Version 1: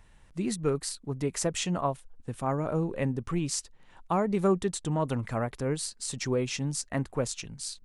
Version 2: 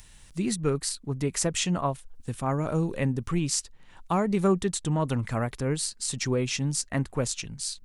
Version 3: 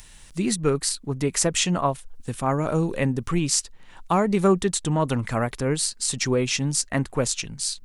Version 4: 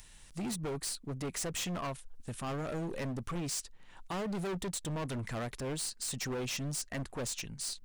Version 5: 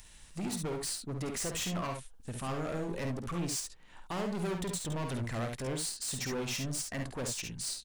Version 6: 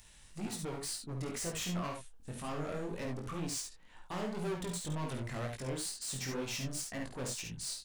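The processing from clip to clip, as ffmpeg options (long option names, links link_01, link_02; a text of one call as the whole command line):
ffmpeg -i in.wav -filter_complex "[0:a]equalizer=frequency=600:width=0.55:gain=-4.5,acrossover=split=3400[link_01][link_02];[link_02]acompressor=mode=upward:threshold=-51dB:ratio=2.5[link_03];[link_01][link_03]amix=inputs=2:normalize=0,volume=4.5dB" out.wav
ffmpeg -i in.wav -af "equalizer=frequency=83:width_type=o:width=2.6:gain=-4.5,volume=5.5dB" out.wav
ffmpeg -i in.wav -af "volume=26dB,asoftclip=hard,volume=-26dB,volume=-8dB" out.wav
ffmpeg -i in.wav -af "aecho=1:1:52|69:0.422|0.447" out.wav
ffmpeg -i in.wav -af "flanger=delay=18:depth=5.4:speed=2" out.wav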